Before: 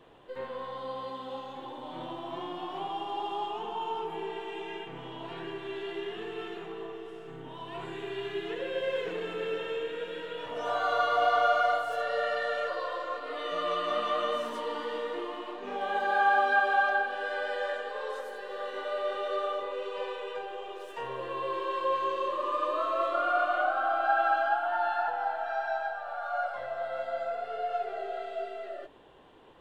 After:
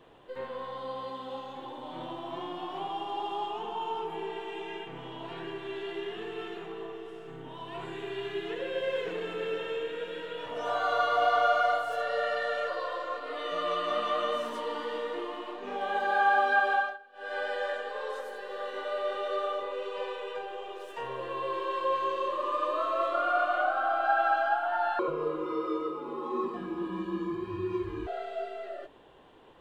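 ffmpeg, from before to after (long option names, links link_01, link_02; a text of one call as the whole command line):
ffmpeg -i in.wav -filter_complex "[0:a]asettb=1/sr,asplit=3[link_01][link_02][link_03];[link_01]atrim=end=24.994[link_04];[link_02]atrim=start=24.99:end=28.07,asetpts=PTS-STARTPTS,afade=type=in:duration=0.004:curve=qsin,afade=type=out:start_time=3.076:duration=0.004:curve=qsin,afreqshift=-340[link_05];[link_03]atrim=start=28.066[link_06];[link_04][link_05]acrossfade=duration=0.004:curve1=hsin:curve2=qsin[link_07];[link_07][link_06]acrossfade=duration=0.004:curve1=qsin:curve2=hsin,asplit=3[link_08][link_09][link_10];[link_08]atrim=end=16.98,asetpts=PTS-STARTPTS,afade=type=out:start_time=16.73:duration=0.25:silence=0.0668344[link_11];[link_09]atrim=start=16.98:end=17.13,asetpts=PTS-STARTPTS,volume=-23.5dB[link_12];[link_10]atrim=start=17.13,asetpts=PTS-STARTPTS,afade=type=in:duration=0.25:silence=0.0668344[link_13];[link_11][link_12][link_13]concat=n=3:v=0:a=1" out.wav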